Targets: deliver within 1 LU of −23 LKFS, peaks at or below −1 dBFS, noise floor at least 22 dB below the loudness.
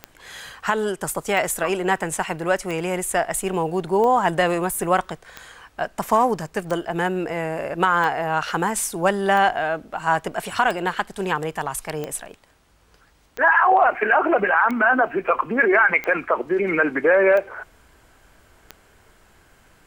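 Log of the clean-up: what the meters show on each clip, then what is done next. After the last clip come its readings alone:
number of clicks 15; integrated loudness −21.0 LKFS; sample peak −5.5 dBFS; target loudness −23.0 LKFS
→ click removal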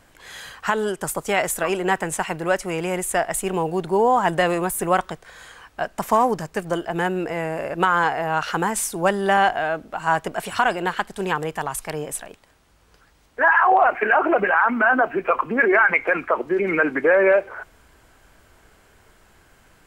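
number of clicks 0; integrated loudness −21.0 LKFS; sample peak −5.5 dBFS; target loudness −23.0 LKFS
→ level −2 dB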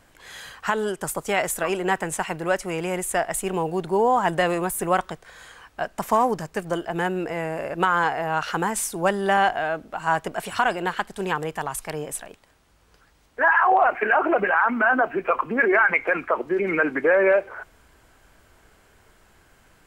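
integrated loudness −23.0 LKFS; sample peak −7.5 dBFS; background noise floor −58 dBFS

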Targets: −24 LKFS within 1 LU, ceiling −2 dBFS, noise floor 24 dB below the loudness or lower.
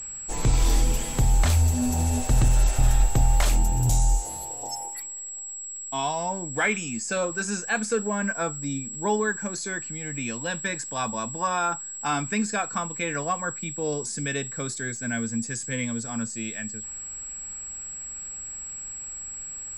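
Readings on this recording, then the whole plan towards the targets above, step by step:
crackle rate 43 per second; interfering tone 7,700 Hz; level of the tone −34 dBFS; integrated loudness −27.0 LKFS; sample peak −9.5 dBFS; target loudness −24.0 LKFS
→ click removal
notch filter 7,700 Hz, Q 30
level +3 dB

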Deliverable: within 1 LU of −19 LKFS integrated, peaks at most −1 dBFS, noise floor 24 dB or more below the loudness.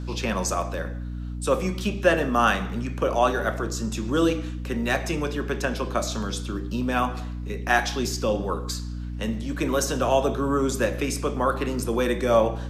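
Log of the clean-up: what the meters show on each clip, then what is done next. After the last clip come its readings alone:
mains hum 60 Hz; hum harmonics up to 300 Hz; level of the hum −30 dBFS; integrated loudness −25.5 LKFS; sample peak −6.0 dBFS; target loudness −19.0 LKFS
→ hum removal 60 Hz, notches 5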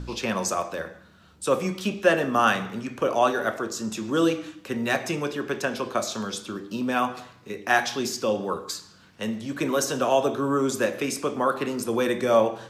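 mains hum none found; integrated loudness −26.0 LKFS; sample peak −6.0 dBFS; target loudness −19.0 LKFS
→ level +7 dB
brickwall limiter −1 dBFS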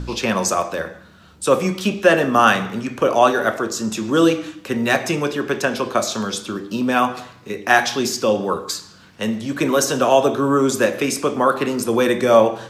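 integrated loudness −19.0 LKFS; sample peak −1.0 dBFS; background noise floor −46 dBFS

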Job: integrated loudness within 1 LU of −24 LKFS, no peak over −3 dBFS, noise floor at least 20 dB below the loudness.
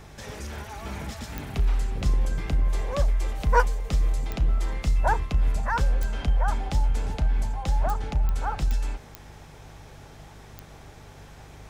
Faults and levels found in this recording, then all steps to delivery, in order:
number of clicks 8; mains hum 50 Hz; hum harmonics up to 150 Hz; level of the hum −40 dBFS; integrated loudness −27.5 LKFS; sample peak −7.0 dBFS; target loudness −24.0 LKFS
→ click removal
hum removal 50 Hz, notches 3
level +3.5 dB

